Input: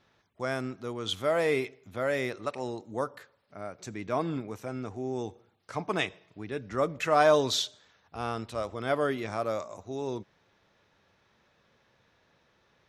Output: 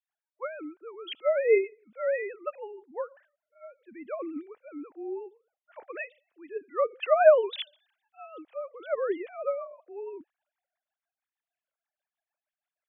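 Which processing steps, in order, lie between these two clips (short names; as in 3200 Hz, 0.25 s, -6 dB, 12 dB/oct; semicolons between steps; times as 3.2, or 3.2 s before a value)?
sine-wave speech; rotary speaker horn 6.3 Hz; three-band expander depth 40%; gain +1 dB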